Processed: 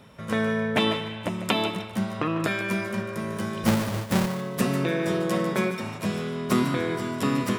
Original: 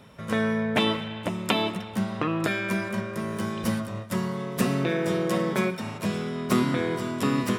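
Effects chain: 3.66–4.26 s: square wave that keeps the level; thinning echo 148 ms, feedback 27%, level -10.5 dB

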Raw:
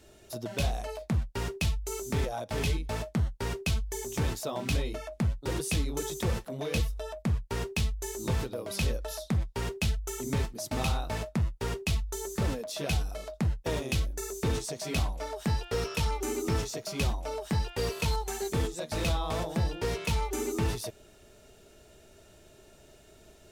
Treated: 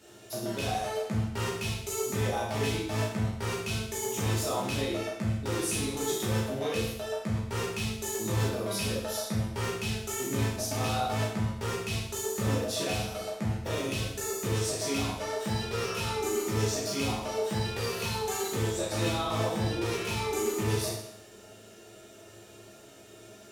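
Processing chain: high-pass 110 Hz 12 dB/octave; peak limiter -26.5 dBFS, peak gain reduction 8.5 dB; reverberation RT60 0.80 s, pre-delay 9 ms, DRR -5.5 dB

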